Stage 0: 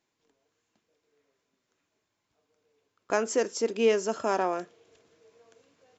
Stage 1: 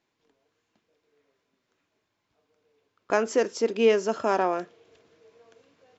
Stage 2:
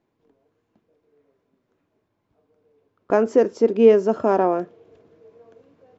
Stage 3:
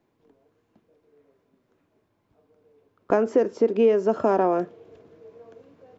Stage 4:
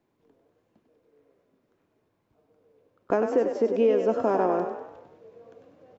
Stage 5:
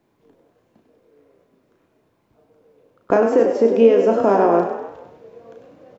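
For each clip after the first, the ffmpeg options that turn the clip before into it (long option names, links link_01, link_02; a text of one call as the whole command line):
ffmpeg -i in.wav -af "lowpass=5100,volume=3dB" out.wav
ffmpeg -i in.wav -af "tiltshelf=frequency=1300:gain=9.5" out.wav
ffmpeg -i in.wav -filter_complex "[0:a]acrossover=split=380|3300[link_01][link_02][link_03];[link_01]acompressor=threshold=-28dB:ratio=4[link_04];[link_02]acompressor=threshold=-22dB:ratio=4[link_05];[link_03]acompressor=threshold=-56dB:ratio=4[link_06];[link_04][link_05][link_06]amix=inputs=3:normalize=0,volume=2.5dB" out.wav
ffmpeg -i in.wav -filter_complex "[0:a]asplit=7[link_01][link_02][link_03][link_04][link_05][link_06][link_07];[link_02]adelay=98,afreqshift=39,volume=-7dB[link_08];[link_03]adelay=196,afreqshift=78,volume=-13dB[link_09];[link_04]adelay=294,afreqshift=117,volume=-19dB[link_10];[link_05]adelay=392,afreqshift=156,volume=-25.1dB[link_11];[link_06]adelay=490,afreqshift=195,volume=-31.1dB[link_12];[link_07]adelay=588,afreqshift=234,volume=-37.1dB[link_13];[link_01][link_08][link_09][link_10][link_11][link_12][link_13]amix=inputs=7:normalize=0,volume=-3.5dB" out.wav
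ffmpeg -i in.wav -filter_complex "[0:a]asplit=2[link_01][link_02];[link_02]adelay=35,volume=-5.5dB[link_03];[link_01][link_03]amix=inputs=2:normalize=0,volume=7.5dB" out.wav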